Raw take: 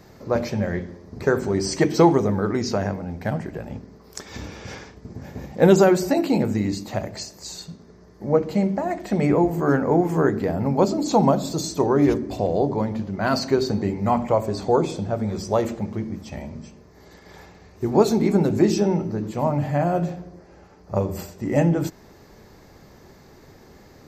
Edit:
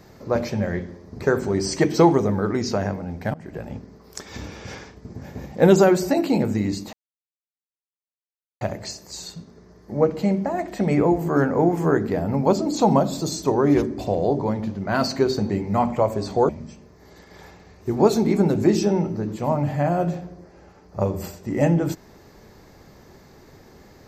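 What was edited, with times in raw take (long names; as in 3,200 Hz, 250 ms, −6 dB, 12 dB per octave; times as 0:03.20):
0:03.34–0:03.59: fade in, from −23 dB
0:06.93: splice in silence 1.68 s
0:14.81–0:16.44: remove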